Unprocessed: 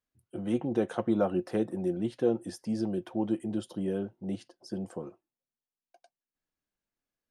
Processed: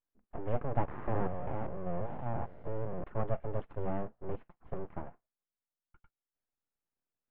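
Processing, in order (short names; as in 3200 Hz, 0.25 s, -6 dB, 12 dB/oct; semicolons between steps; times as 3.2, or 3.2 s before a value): 0.88–3.04 stepped spectrum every 0.2 s; full-wave rectifier; Bessel low-pass 1500 Hz, order 8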